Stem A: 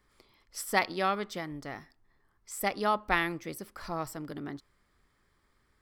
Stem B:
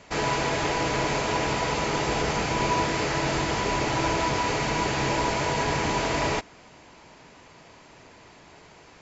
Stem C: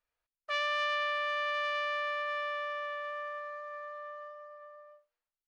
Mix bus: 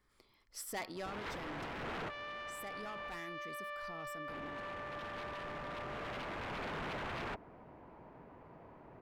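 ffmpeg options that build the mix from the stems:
-filter_complex "[0:a]asoftclip=type=tanh:threshold=-28dB,volume=-5.5dB[a];[1:a]lowpass=1.1k,aeval=exprs='0.0316*(abs(mod(val(0)/0.0316+3,4)-2)-1)':c=same,adelay=950,volume=-3.5dB,asplit=3[b][c][d];[b]atrim=end=3.12,asetpts=PTS-STARTPTS,afade=t=out:st=3.116:d=0.004:c=hsin[e];[c]atrim=start=3.12:end=4.28,asetpts=PTS-STARTPTS,volume=0[f];[d]atrim=start=4.28,asetpts=PTS-STARTPTS,afade=t=in:d=0.004:c=hsin[g];[e][f][g]concat=n=3:v=0:a=1[h];[2:a]adelay=1600,volume=3dB[i];[h][i]amix=inputs=2:normalize=0,aemphasis=mode=reproduction:type=cd,acompressor=threshold=-36dB:ratio=6,volume=0dB[j];[a][j]amix=inputs=2:normalize=0,alimiter=level_in=12dB:limit=-24dB:level=0:latency=1:release=66,volume=-12dB"

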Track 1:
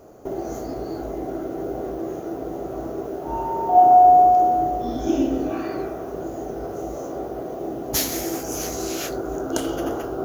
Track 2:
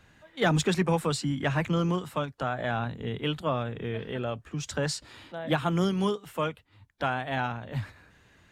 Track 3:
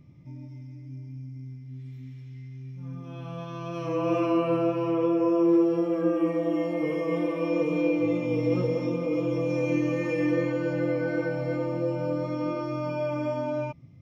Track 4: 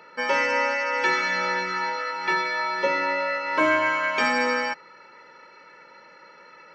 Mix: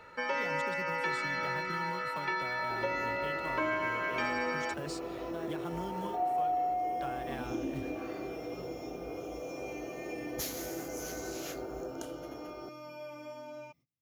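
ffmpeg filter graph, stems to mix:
-filter_complex "[0:a]adelay=2450,volume=-12.5dB,afade=t=out:st=11.78:d=0.32:silence=0.421697[a];[1:a]acompressor=threshold=-31dB:ratio=4,acrusher=bits=5:mode=log:mix=0:aa=0.000001,volume=-6.5dB[b];[2:a]aemphasis=mode=production:type=riaa,agate=range=-23dB:threshold=-49dB:ratio=16:detection=peak,volume=-13.5dB[c];[3:a]highshelf=f=5.7k:g=-9,volume=-4dB[d];[a][b][c][d]amix=inputs=4:normalize=0,acompressor=threshold=-34dB:ratio=2"

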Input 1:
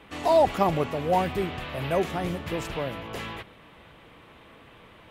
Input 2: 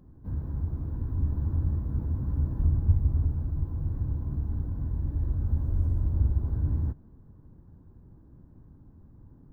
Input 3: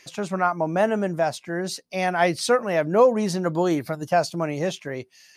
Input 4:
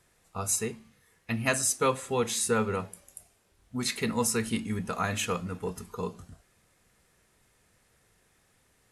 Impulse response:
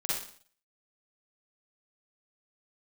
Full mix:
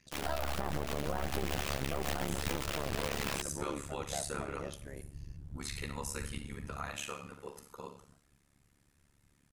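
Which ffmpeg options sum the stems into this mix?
-filter_complex "[0:a]acrusher=bits=3:dc=4:mix=0:aa=0.000001,volume=2.5dB,asplit=2[a][b];[b]volume=-22.5dB[c];[1:a]volume=-15dB[d];[2:a]volume=19dB,asoftclip=hard,volume=-19dB,volume=-14.5dB,asplit=2[e][f];[f]volume=-17.5dB[g];[3:a]lowshelf=f=370:g=-11.5,alimiter=limit=-23dB:level=0:latency=1:release=81,adelay=1800,volume=-10.5dB,asplit=2[h][i];[i]volume=-5.5dB[j];[a][h]amix=inputs=2:normalize=0,dynaudnorm=f=210:g=11:m=5dB,alimiter=limit=-14dB:level=0:latency=1:release=81,volume=0dB[k];[4:a]atrim=start_sample=2205[l];[c][g][j]amix=inputs=3:normalize=0[m];[m][l]afir=irnorm=-1:irlink=0[n];[d][e][k][n]amix=inputs=4:normalize=0,tremolo=f=71:d=0.974,alimiter=limit=-22dB:level=0:latency=1:release=95"

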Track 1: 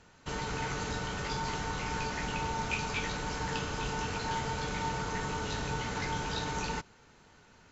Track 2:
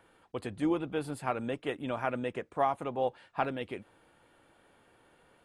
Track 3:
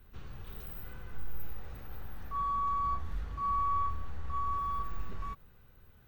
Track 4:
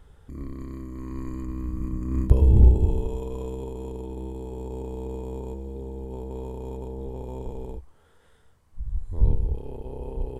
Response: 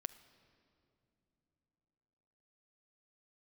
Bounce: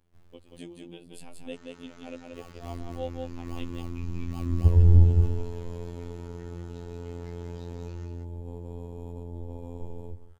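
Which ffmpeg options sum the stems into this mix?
-filter_complex "[0:a]adelay=1250,volume=-17dB,asplit=2[a][b];[b]volume=-5dB[c];[1:a]agate=range=-33dB:threshold=-55dB:ratio=3:detection=peak,firequalizer=gain_entry='entry(390,0);entry(1300,-17);entry(2800,4)':delay=0.05:min_phase=1,aeval=exprs='val(0)*pow(10,-22*(0.5-0.5*cos(2*PI*3.3*n/s))/20)':c=same,volume=1dB,asplit=3[d][e][f];[e]volume=-4dB[g];[2:a]acrusher=samples=32:mix=1:aa=0.000001:lfo=1:lforange=19.2:lforate=3.6,volume=-10dB[h];[3:a]lowshelf=f=230:g=6.5,adelay=2350,volume=-3.5dB,asplit=2[i][j];[j]volume=-14dB[k];[f]apad=whole_len=268002[l];[h][l]sidechaincompress=threshold=-40dB:ratio=8:attack=16:release=871[m];[c][g][k]amix=inputs=3:normalize=0,aecho=0:1:181:1[n];[a][d][m][i][n]amix=inputs=5:normalize=0,afftfilt=real='hypot(re,im)*cos(PI*b)':imag='0':win_size=2048:overlap=0.75"

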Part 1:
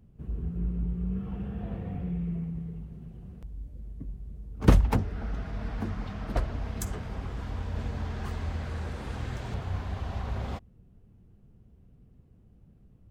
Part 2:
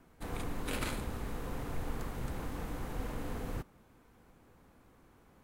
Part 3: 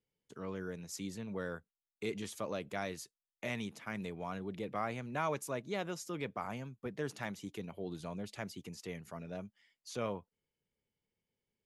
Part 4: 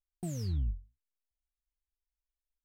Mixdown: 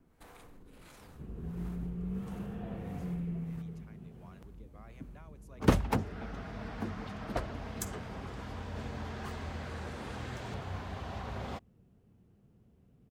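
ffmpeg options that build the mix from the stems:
-filter_complex "[0:a]highpass=f=180:p=1,adelay=1000,volume=-1dB[a];[1:a]alimiter=level_in=7dB:limit=-24dB:level=0:latency=1:release=10,volume=-7dB,volume=-2dB[b];[2:a]volume=-14dB[c];[3:a]adelay=600,volume=-13dB[d];[b][c][d]amix=inputs=3:normalize=0,acrossover=split=450[e][f];[e]aeval=exprs='val(0)*(1-0.7/2+0.7/2*cos(2*PI*1.5*n/s))':c=same[g];[f]aeval=exprs='val(0)*(1-0.7/2-0.7/2*cos(2*PI*1.5*n/s))':c=same[h];[g][h]amix=inputs=2:normalize=0,acompressor=threshold=-51dB:ratio=10,volume=0dB[i];[a][i]amix=inputs=2:normalize=0"

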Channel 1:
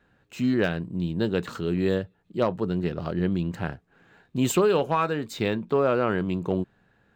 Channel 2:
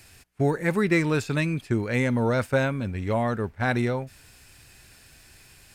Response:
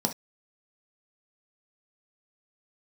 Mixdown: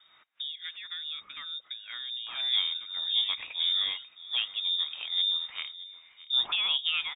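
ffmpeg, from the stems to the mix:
-filter_complex "[0:a]adelay=1950,volume=-2dB,asplit=2[a][b];[b]volume=-17dB[c];[1:a]acompressor=threshold=-31dB:ratio=8,volume=-2dB[d];[c]aecho=0:1:620:1[e];[a][d][e]amix=inputs=3:normalize=0,highpass=61,acrossover=split=730[f][g];[f]aeval=exprs='val(0)*(1-0.7/2+0.7/2*cos(2*PI*1.9*n/s))':c=same[h];[g]aeval=exprs='val(0)*(1-0.7/2-0.7/2*cos(2*PI*1.9*n/s))':c=same[i];[h][i]amix=inputs=2:normalize=0,lowpass=f=3.2k:t=q:w=0.5098,lowpass=f=3.2k:t=q:w=0.6013,lowpass=f=3.2k:t=q:w=0.9,lowpass=f=3.2k:t=q:w=2.563,afreqshift=-3800"

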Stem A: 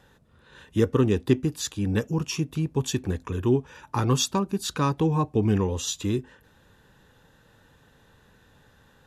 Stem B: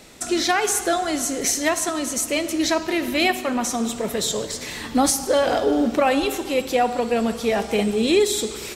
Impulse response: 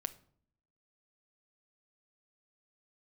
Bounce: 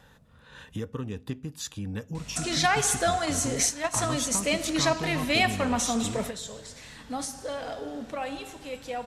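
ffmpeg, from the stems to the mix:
-filter_complex "[0:a]acompressor=threshold=-38dB:ratio=2.5,volume=-0.5dB,asplit=3[a][b][c];[b]volume=-7dB[d];[1:a]lowpass=f=11k:w=0.5412,lowpass=f=11k:w=1.3066,aeval=exprs='val(0)+0.00708*(sin(2*PI*50*n/s)+sin(2*PI*2*50*n/s)/2+sin(2*PI*3*50*n/s)/3+sin(2*PI*4*50*n/s)/4+sin(2*PI*5*50*n/s)/5)':c=same,adelay=2150,volume=-5dB,asplit=2[e][f];[f]volume=-8.5dB[g];[c]apad=whole_len=480793[h];[e][h]sidechaingate=range=-33dB:threshold=-48dB:ratio=16:detection=peak[i];[2:a]atrim=start_sample=2205[j];[d][g]amix=inputs=2:normalize=0[k];[k][j]afir=irnorm=-1:irlink=0[l];[a][i][l]amix=inputs=3:normalize=0,equalizer=f=360:w=4.9:g=-12.5"

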